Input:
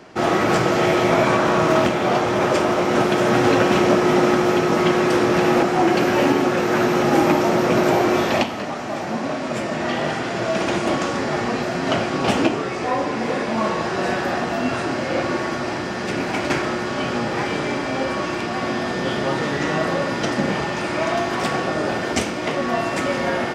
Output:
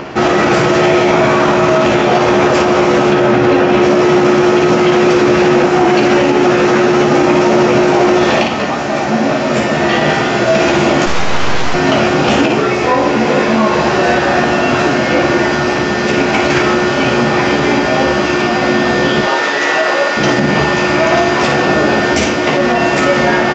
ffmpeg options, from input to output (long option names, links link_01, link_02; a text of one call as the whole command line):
ffmpeg -i in.wav -filter_complex "[0:a]asettb=1/sr,asplit=3[link_01][link_02][link_03];[link_01]atrim=end=3.124[link_04];[link_02]atrim=start=3.12:end=3.82,asetpts=PTS-STARTPTS,afade=type=in:duration=0.004:curve=qsin,afade=type=out:start_time=0.696:duration=0.004:curve=qsin,aemphasis=mode=reproduction:type=50fm[link_05];[link_03]atrim=start=3.816[link_06];[link_04][link_05]acrossfade=duration=0.004:curve1=hsin:curve2=qsin[link_07];[link_07][link_06]acrossfade=duration=0.004:curve1=qsin:curve2=hsin,asettb=1/sr,asplit=3[link_08][link_09][link_10];[link_08]atrim=end=19.214[link_11];[link_09]atrim=start=19.21:end=20.17,asetpts=PTS-STARTPTS,afade=type=in:duration=0.004:curve=qsin,afade=type=out:start_time=0.956:duration=0.004:curve=qsin,highpass=530[link_12];[link_10]atrim=start=20.166[link_13];[link_11][link_12]acrossfade=duration=0.004:curve1=hsin:curve2=qsin[link_14];[link_14][link_13]acrossfade=duration=0.004:curve1=qsin:curve2=hsin,equalizer=frequency=2600:width=5.9:gain=2.5,acrossover=split=4000[link_15][link_16];[link_15]acompressor=mode=upward:threshold=-29dB:ratio=2.5[link_17];[link_17][link_16]amix=inputs=2:normalize=0,asettb=1/sr,asplit=3[link_18][link_19][link_20];[link_18]atrim=end=11.064[link_21];[link_19]atrim=start=11.06:end=11.74,asetpts=PTS-STARTPTS,afade=type=in:duration=0.004:curve=qsin,afade=type=out:start_time=0.676:duration=0.004:curve=qsin,aeval=exprs='abs(val(0))':channel_layout=same[link_22];[link_20]atrim=start=11.736[link_23];[link_21][link_22]acrossfade=duration=0.004:curve1=hsin:curve2=qsin[link_24];[link_24][link_23]acrossfade=duration=0.004:curve1=qsin:curve2=hsin,aecho=1:1:14|55:0.631|0.501,aresample=16000,aresample=44100,alimiter=level_in=10dB:limit=-1dB:release=50:level=0:latency=1,volume=-1dB" out.wav